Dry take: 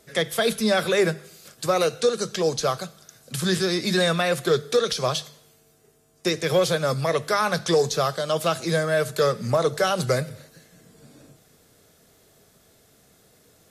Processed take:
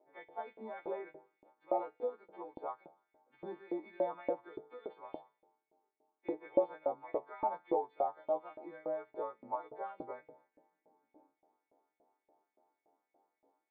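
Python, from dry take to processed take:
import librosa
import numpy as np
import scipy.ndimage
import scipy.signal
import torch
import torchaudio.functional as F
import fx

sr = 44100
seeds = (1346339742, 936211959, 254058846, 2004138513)

y = fx.freq_snap(x, sr, grid_st=2)
y = fx.filter_lfo_highpass(y, sr, shape='saw_up', hz=3.5, low_hz=570.0, high_hz=2500.0, q=2.6)
y = fx.formant_cascade(y, sr, vowel='u')
y = y * 10.0 ** (4.5 / 20.0)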